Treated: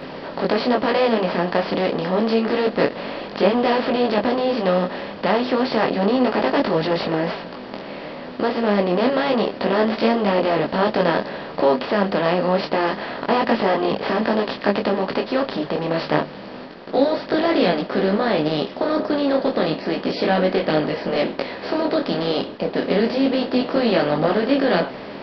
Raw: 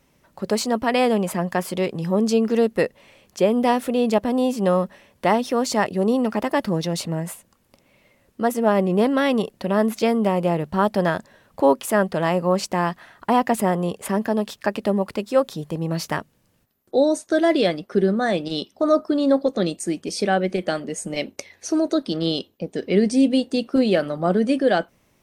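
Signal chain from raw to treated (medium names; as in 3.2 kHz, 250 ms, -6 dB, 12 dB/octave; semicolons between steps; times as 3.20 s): spectral levelling over time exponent 0.4; resampled via 11.025 kHz; detune thickener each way 10 cents; trim -1.5 dB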